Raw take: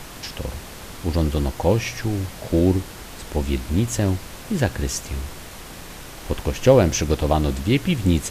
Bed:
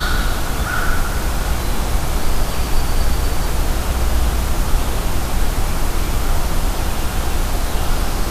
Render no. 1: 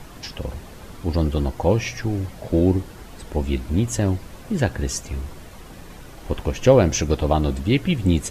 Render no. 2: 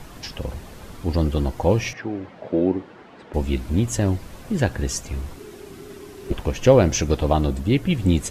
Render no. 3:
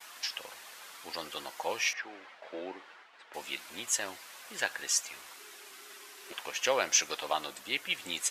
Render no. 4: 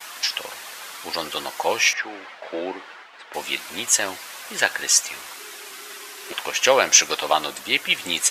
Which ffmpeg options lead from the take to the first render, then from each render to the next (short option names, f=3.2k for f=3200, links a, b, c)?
-af "afftdn=nr=9:nf=-38"
-filter_complex "[0:a]asettb=1/sr,asplit=3[a][b][c];[a]atrim=end=1.934[d];[b]atrim=start=1.93:end=3.34,asetpts=PTS-STARTPTS,afade=t=in:d=0.004:c=qsin,afade=t=out:st=1.406:d=0.004:c=qsin,highpass=230,lowpass=2.5k[e];[c]atrim=start=3.336[f];[d][e]acrossfade=d=0.004:c1=hsin:c2=qsin[g];[g][f]acrossfade=d=0.004:c1=qsin:c2=hsin,asettb=1/sr,asplit=3[h][i][j];[h]atrim=end=5.364[k];[i]atrim=start=5.36:end=6.33,asetpts=PTS-STARTPTS,afade=t=in:d=0.004:c=qsin,afade=t=out:st=0.966:d=0.004:c=qsin,afreqshift=-430[l];[j]atrim=start=6.326[m];[k][l]acrossfade=d=0.004:c1=hsin:c2=qsin[n];[n][m]acrossfade=d=0.004:c1=qsin:c2=hsin,asettb=1/sr,asplit=3[o][p][q];[o]atrim=end=7.464[r];[p]atrim=start=7.46:end=7.91,asetpts=PTS-STARTPTS,afade=t=in:d=0.004:c=qsin,afade=t=out:st=0.446:d=0.004:c=qsin,equalizer=f=2.9k:t=o:w=2.5:g=-4[s];[q]atrim=start=7.906[t];[r][s]acrossfade=d=0.004:c1=hsin:c2=qsin[u];[u][t]acrossfade=d=0.004:c1=qsin:c2=hsin"
-af "agate=range=-33dB:threshold=-40dB:ratio=3:detection=peak,highpass=1.3k"
-af "volume=12dB,alimiter=limit=-1dB:level=0:latency=1"